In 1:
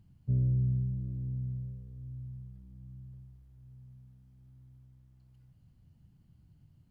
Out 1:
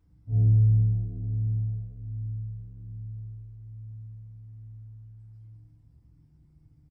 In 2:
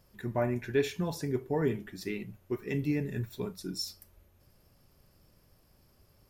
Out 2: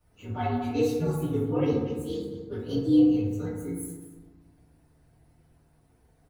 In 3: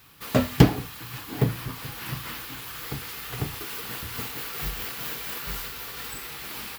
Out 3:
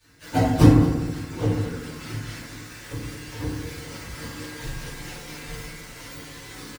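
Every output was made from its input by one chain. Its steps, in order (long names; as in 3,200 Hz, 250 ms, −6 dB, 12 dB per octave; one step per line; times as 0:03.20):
partials spread apart or drawn together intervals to 122%
feedback delay network reverb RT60 1.3 s, low-frequency decay 1.3×, high-frequency decay 0.35×, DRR −9 dB
harmonic and percussive parts rebalanced percussive +5 dB
on a send: single-tap delay 222 ms −15.5 dB
on the sum: level −7 dB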